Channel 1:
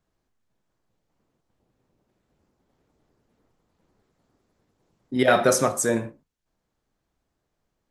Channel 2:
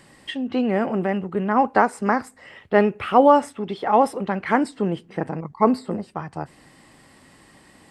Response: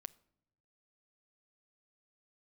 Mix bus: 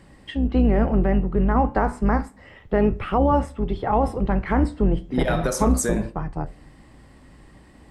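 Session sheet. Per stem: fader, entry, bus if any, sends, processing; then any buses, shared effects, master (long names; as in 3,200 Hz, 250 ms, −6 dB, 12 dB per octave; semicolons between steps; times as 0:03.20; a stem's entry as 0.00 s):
+0.5 dB, 0.00 s, send −1.5 dB, downward compressor 12 to 1, threshold −24 dBFS, peak gain reduction 12 dB
−0.5 dB, 0.00 s, send −2.5 dB, sub-octave generator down 2 octaves, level −2 dB; spectral tilt −2 dB per octave; flanger 0.34 Hz, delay 9.4 ms, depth 7.4 ms, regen −74%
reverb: on, pre-delay 7 ms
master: brickwall limiter −9.5 dBFS, peak gain reduction 8.5 dB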